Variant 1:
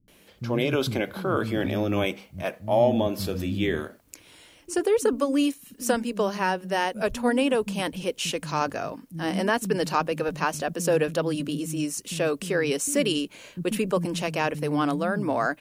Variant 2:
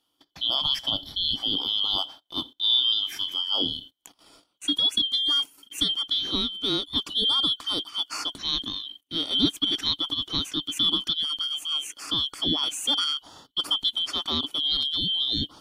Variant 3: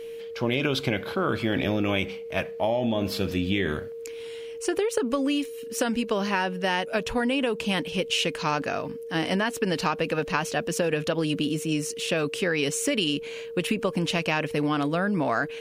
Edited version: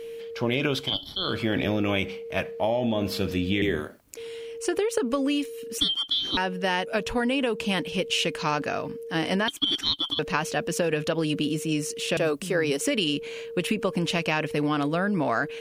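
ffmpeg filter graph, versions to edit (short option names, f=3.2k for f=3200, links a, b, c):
-filter_complex "[1:a]asplit=3[a][b][c];[0:a]asplit=2[d][e];[2:a]asplit=6[f][g][h][i][j][k];[f]atrim=end=0.96[l];[a]atrim=start=0.72:end=1.38[m];[g]atrim=start=1.14:end=3.622[n];[d]atrim=start=3.618:end=4.172[o];[h]atrim=start=4.168:end=5.782[p];[b]atrim=start=5.778:end=6.372[q];[i]atrim=start=6.368:end=9.482[r];[c]atrim=start=9.478:end=10.192[s];[j]atrim=start=10.188:end=12.172[t];[e]atrim=start=12.168:end=12.812[u];[k]atrim=start=12.808[v];[l][m]acrossfade=d=0.24:c1=tri:c2=tri[w];[w][n]acrossfade=d=0.24:c1=tri:c2=tri[x];[x][o]acrossfade=d=0.004:c1=hsin:c2=hsin[y];[y][p]acrossfade=d=0.004:c1=hsin:c2=hsin[z];[z][q]acrossfade=d=0.004:c1=hsin:c2=hsin[aa];[aa][r]acrossfade=d=0.004:c1=hsin:c2=hsin[ab];[ab][s]acrossfade=d=0.004:c1=hsin:c2=hsin[ac];[ac][t]acrossfade=d=0.004:c1=hsin:c2=hsin[ad];[ad][u]acrossfade=d=0.004:c1=hsin:c2=hsin[ae];[ae][v]acrossfade=d=0.004:c1=hsin:c2=hsin"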